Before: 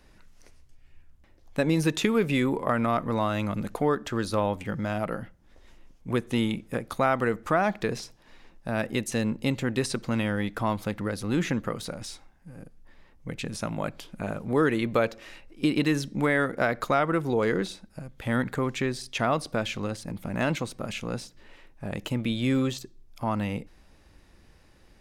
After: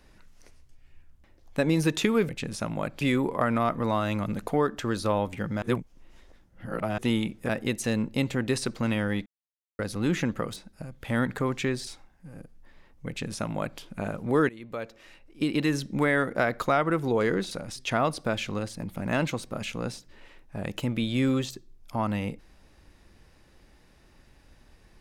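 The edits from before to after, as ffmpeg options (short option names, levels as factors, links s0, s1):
-filter_complex "[0:a]asplit=13[s0][s1][s2][s3][s4][s5][s6][s7][s8][s9][s10][s11][s12];[s0]atrim=end=2.292[s13];[s1]atrim=start=13.298:end=14.022[s14];[s2]atrim=start=2.288:end=4.902[s15];[s3]atrim=start=4.898:end=6.262,asetpts=PTS-STARTPTS,areverse[s16];[s4]atrim=start=6.258:end=6.772[s17];[s5]atrim=start=8.768:end=10.54,asetpts=PTS-STARTPTS,afade=t=out:st=1.768:d=0.004:c=hsin[s18];[s6]atrim=start=10.54:end=11.07,asetpts=PTS-STARTPTS,volume=0[s19];[s7]atrim=start=11.07:end=11.842,asetpts=PTS-STARTPTS,afade=t=in:d=0.004:c=hsin[s20];[s8]atrim=start=17.728:end=19.042[s21];[s9]atrim=start=12.088:end=14.71,asetpts=PTS-STARTPTS,afade=t=out:st=2.618:d=0.004:c=hsin:silence=0.0841395[s22];[s10]atrim=start=14.71:end=17.732,asetpts=PTS-STARTPTS,afade=t=in:d=1.37:silence=0.0841395[s23];[s11]atrim=start=11.838:end=12.092[s24];[s12]atrim=start=19.038[s25];[s13][s14]acrossfade=d=0.004:c1=hsin:c2=hsin[s26];[s26][s15]acrossfade=d=0.004:c1=hsin:c2=hsin[s27];[s27][s16]acrossfade=d=0.004:c1=hsin:c2=hsin[s28];[s28][s17]acrossfade=d=0.004:c1=hsin:c2=hsin[s29];[s18][s19][s20]concat=n=3:v=0:a=1[s30];[s29][s30]acrossfade=d=0.004:c1=hsin:c2=hsin[s31];[s31][s21]acrossfade=d=0.004:c1=hsin:c2=hsin[s32];[s22][s23]concat=n=2:v=0:a=1[s33];[s32][s33]acrossfade=d=0.004:c1=hsin:c2=hsin[s34];[s34][s24]acrossfade=d=0.004:c1=hsin:c2=hsin[s35];[s35][s25]acrossfade=d=0.004:c1=hsin:c2=hsin"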